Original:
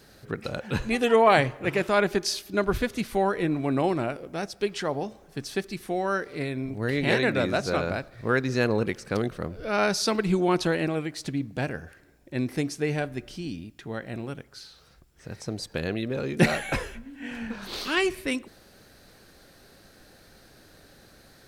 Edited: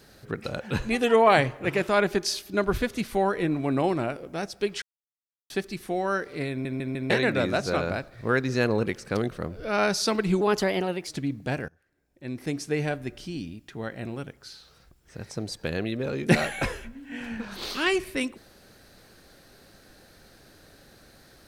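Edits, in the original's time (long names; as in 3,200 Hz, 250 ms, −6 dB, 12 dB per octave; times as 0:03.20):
0:04.82–0:05.50: silence
0:06.50: stutter in place 0.15 s, 4 plays
0:10.41–0:11.18: play speed 116%
0:11.79–0:12.75: fade in quadratic, from −21.5 dB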